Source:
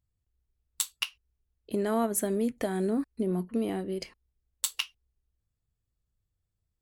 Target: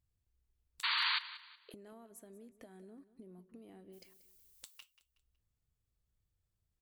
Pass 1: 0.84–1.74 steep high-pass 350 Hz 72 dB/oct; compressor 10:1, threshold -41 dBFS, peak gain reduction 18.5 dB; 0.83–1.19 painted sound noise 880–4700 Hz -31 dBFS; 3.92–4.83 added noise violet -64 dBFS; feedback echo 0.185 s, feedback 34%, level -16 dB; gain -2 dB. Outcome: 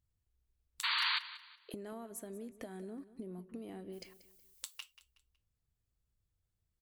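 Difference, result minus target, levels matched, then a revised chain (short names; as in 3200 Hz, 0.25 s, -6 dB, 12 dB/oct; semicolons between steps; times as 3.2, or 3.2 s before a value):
compressor: peak gain reduction -9 dB
0.84–1.74 steep high-pass 350 Hz 72 dB/oct; compressor 10:1, threshold -51 dBFS, peak gain reduction 27.5 dB; 0.83–1.19 painted sound noise 880–4700 Hz -31 dBFS; 3.92–4.83 added noise violet -64 dBFS; feedback echo 0.185 s, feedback 34%, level -16 dB; gain -2 dB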